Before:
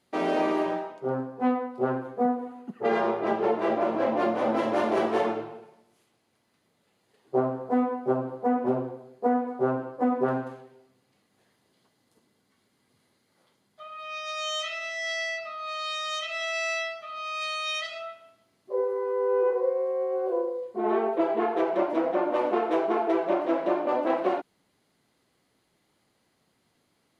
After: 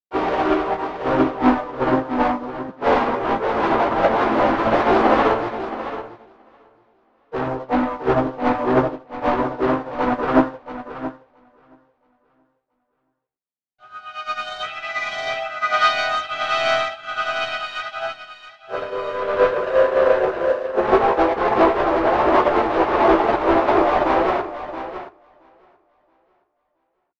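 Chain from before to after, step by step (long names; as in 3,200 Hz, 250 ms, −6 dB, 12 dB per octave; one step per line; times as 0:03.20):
pitch-shifted copies added +3 semitones −5 dB, +4 semitones −11 dB
leveller curve on the samples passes 5
dynamic equaliser 1,100 Hz, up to +6 dB, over −29 dBFS, Q 1.5
multi-voice chorus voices 4, 0.71 Hz, delay 17 ms, depth 2 ms
high-frequency loss of the air 160 metres
repeating echo 674 ms, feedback 35%, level −4 dB
expander for the loud parts 2.5 to 1, over −26 dBFS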